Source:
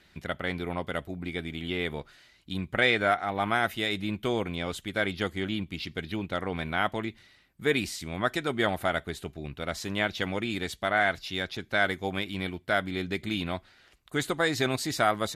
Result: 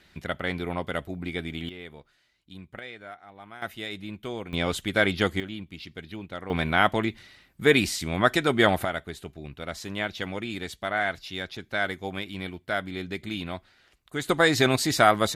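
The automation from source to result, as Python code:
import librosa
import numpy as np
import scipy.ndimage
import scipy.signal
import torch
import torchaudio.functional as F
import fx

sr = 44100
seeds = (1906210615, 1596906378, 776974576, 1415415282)

y = fx.gain(x, sr, db=fx.steps((0.0, 2.0), (1.69, -11.0), (2.79, -18.0), (3.62, -6.0), (4.53, 6.0), (5.4, -5.5), (6.5, 6.5), (8.85, -2.0), (14.29, 6.0)))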